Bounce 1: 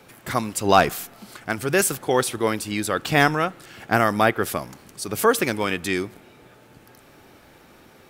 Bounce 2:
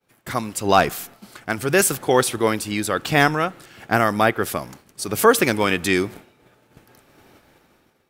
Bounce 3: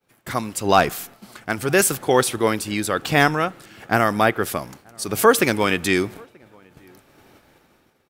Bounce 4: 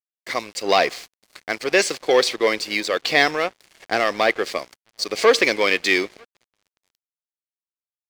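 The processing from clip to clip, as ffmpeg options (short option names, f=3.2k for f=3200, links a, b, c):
-af "agate=range=-33dB:threshold=-39dB:ratio=3:detection=peak,dynaudnorm=f=200:g=7:m=15dB,volume=-1dB"
-filter_complex "[0:a]asplit=2[a][b];[b]adelay=932.9,volume=-29dB,highshelf=f=4k:g=-21[c];[a][c]amix=inputs=2:normalize=0"
-af "acontrast=84,highpass=420,equalizer=f=500:t=q:w=4:g=4,equalizer=f=870:t=q:w=4:g=-6,equalizer=f=1.4k:t=q:w=4:g=-9,equalizer=f=2.1k:t=q:w=4:g=7,equalizer=f=4.5k:t=q:w=4:g=8,lowpass=f=6.6k:w=0.5412,lowpass=f=6.6k:w=1.3066,aeval=exprs='sgn(val(0))*max(abs(val(0))-0.02,0)':c=same,volume=-3.5dB"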